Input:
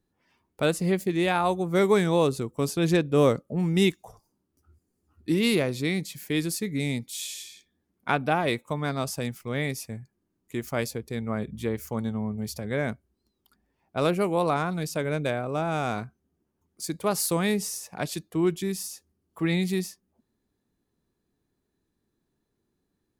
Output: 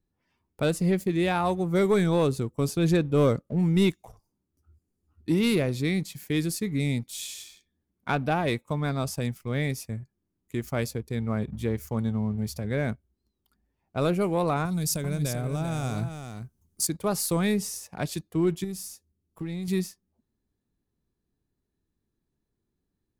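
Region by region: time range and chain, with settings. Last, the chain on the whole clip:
14.65–16.87 s: compression 3:1, threshold -32 dBFS + tone controls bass +7 dB, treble +15 dB + delay 391 ms -8 dB
18.64–19.68 s: peaking EQ 1.6 kHz -6.5 dB 2.7 oct + compression, threshold -31 dBFS
whole clip: waveshaping leveller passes 1; bass shelf 140 Hz +10.5 dB; trim -5.5 dB

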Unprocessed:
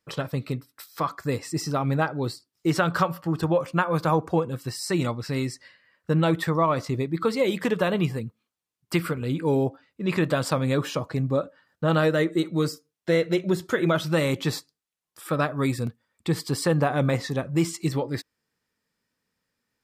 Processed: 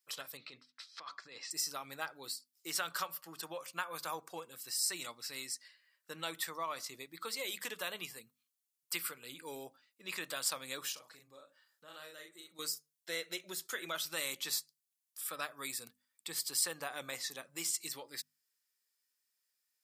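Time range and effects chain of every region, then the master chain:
0.37–1.51 s: low-pass 4.8 kHz 24 dB/octave + bass shelf 120 Hz -6 dB + compressor with a negative ratio -31 dBFS
10.92–12.59 s: doubling 40 ms -3.5 dB + compression 2:1, threshold -42 dBFS
whole clip: high-pass 130 Hz; differentiator; hum notches 50/100/150/200/250 Hz; trim +1 dB

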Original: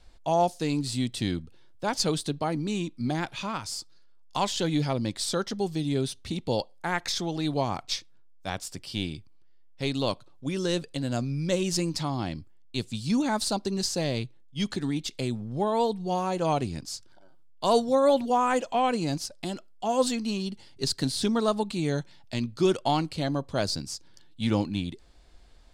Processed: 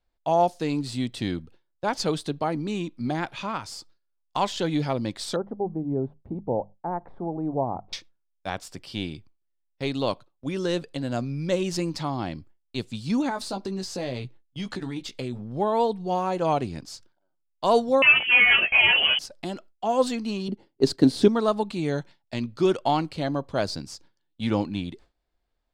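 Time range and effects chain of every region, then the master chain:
5.36–7.93 s: Chebyshev low-pass 850 Hz, order 3 + hum notches 50/100/150/200 Hz
13.29–15.39 s: doubling 16 ms -5.5 dB + compression 4:1, threshold -28 dBFS
18.02–19.19 s: overdrive pedal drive 23 dB, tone 1.4 kHz, clips at -12.5 dBFS + doubling 19 ms -2 dB + frequency inversion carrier 3.2 kHz
20.48–21.28 s: gate -39 dBFS, range -6 dB + peaking EQ 330 Hz +12.5 dB 1.8 oct + tape noise reduction on one side only decoder only
whole clip: peaking EQ 10 kHz -10.5 dB 2.5 oct; gate with hold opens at -38 dBFS; bass shelf 250 Hz -6.5 dB; trim +4 dB

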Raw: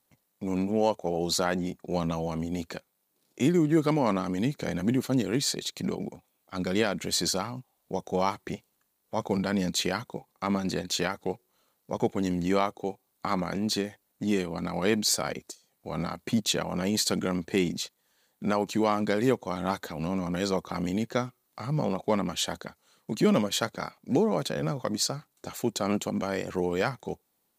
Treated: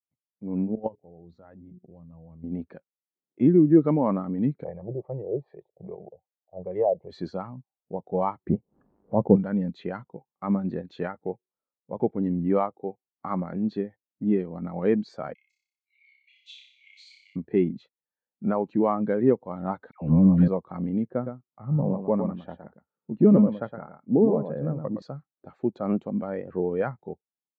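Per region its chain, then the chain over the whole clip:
0.75–2.44 s: peaking EQ 76 Hz +12.5 dB 2.4 oct + hum notches 60/120/180/240/300/360/420 Hz + level held to a coarse grid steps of 21 dB
4.64–7.10 s: static phaser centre 600 Hz, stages 4 + LFO low-pass sine 2.5 Hz 560–1800 Hz
8.49–9.36 s: tilt shelf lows +9.5 dB, about 1.3 kHz + upward compressor, threshold -30 dBFS
15.34–17.36 s: rippled Chebyshev high-pass 2.1 kHz, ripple 3 dB + flutter echo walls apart 5.2 m, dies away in 0.93 s
19.91–20.48 s: bass shelf 310 Hz +11.5 dB + phase dispersion lows, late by 107 ms, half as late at 1.1 kHz
21.10–25.02 s: low-pass 1.4 kHz 6 dB/octave + delay 114 ms -5.5 dB
whole clip: low-pass 2 kHz 12 dB/octave; level rider gain up to 4 dB; spectral contrast expander 1.5:1

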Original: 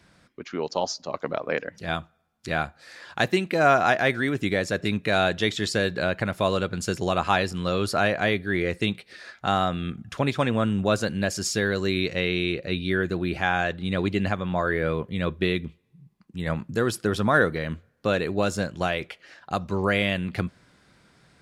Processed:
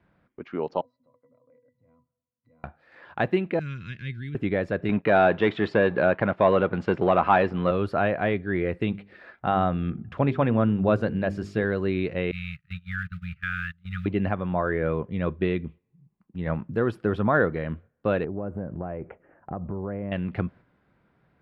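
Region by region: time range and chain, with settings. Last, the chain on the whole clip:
0.81–2.64 s: pitch-class resonator B, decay 0.12 s + compression 3:1, threshold -58 dBFS
3.59–4.35 s: Chebyshev band-stop 150–3500 Hz + comb 1.9 ms, depth 32%
4.89–7.71 s: waveshaping leveller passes 2 + high-pass 250 Hz 6 dB/octave + distance through air 130 m
8.90–11.64 s: bass shelf 420 Hz +3.5 dB + hum notches 50/100/150/200/250/300/350/400/450 Hz
12.31–14.06 s: block-companded coder 5-bit + gate -28 dBFS, range -21 dB + brick-wall FIR band-stop 180–1200 Hz
18.24–20.12 s: tilt shelf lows +9.5 dB, about 1.3 kHz + compression 4:1, threshold -30 dBFS + Butterworth band-stop 4.7 kHz, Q 0.6
whole clip: gate -45 dBFS, range -6 dB; FFT filter 910 Hz 0 dB, 2.8 kHz -8 dB, 6.3 kHz -29 dB

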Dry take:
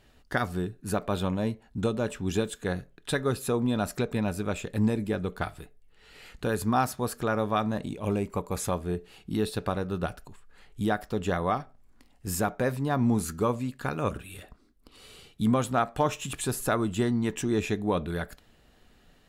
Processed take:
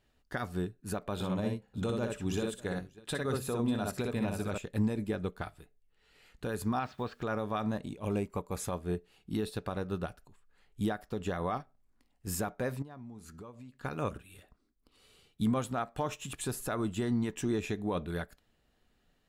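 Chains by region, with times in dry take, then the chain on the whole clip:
1.14–4.58 s: de-hum 65.24 Hz, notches 9 + multi-tap echo 60/594 ms -4.5/-18 dB
6.79–7.22 s: low-pass 3.4 kHz 24 dB/octave + treble shelf 2.1 kHz +11 dB + word length cut 10-bit, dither none
12.82–13.85 s: treble shelf 9.8 kHz -10.5 dB + compression 5:1, threshold -37 dBFS
whole clip: peak limiter -20 dBFS; upward expansion 1.5:1, over -47 dBFS; trim -1 dB

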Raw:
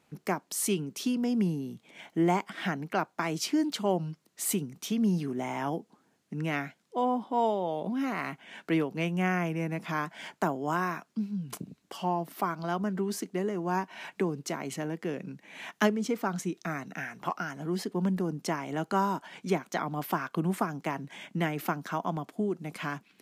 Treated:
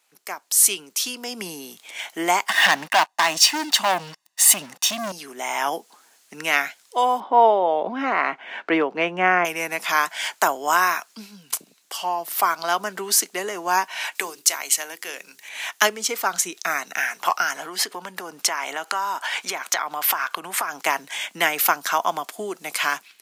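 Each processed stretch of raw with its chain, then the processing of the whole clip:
2.48–5.12 s: low-pass 2.9 kHz 6 dB/octave + comb 1.1 ms, depth 90% + waveshaping leveller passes 3
7.20–9.45 s: low-pass 2 kHz + peaking EQ 310 Hz +6.5 dB 2.6 oct
14.15–15.49 s: tilt EQ +2.5 dB/octave + hum notches 50/100/150/200/250/300/350/400 Hz
17.55–20.82 s: peaking EQ 1.4 kHz +7 dB 2.9 oct + compression 4:1, threshold -35 dBFS
whole clip: high-pass 720 Hz 12 dB/octave; treble shelf 3.6 kHz +12 dB; level rider gain up to 14 dB; trim -1 dB

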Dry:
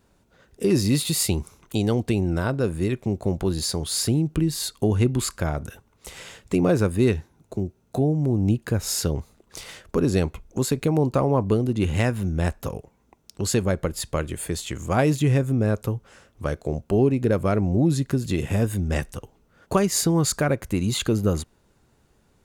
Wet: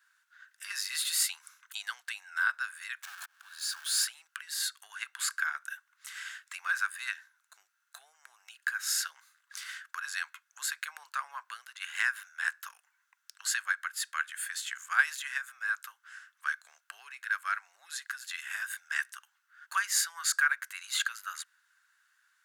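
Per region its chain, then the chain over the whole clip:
3.03–4.05 s: jump at every zero crossing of -30 dBFS + band-stop 2 kHz, Q 6.4 + slow attack 781 ms
whole clip: steep high-pass 1.2 kHz 36 dB/octave; peaking EQ 1.6 kHz +14 dB 0.4 oct; band-stop 2.4 kHz, Q 22; trim -4 dB

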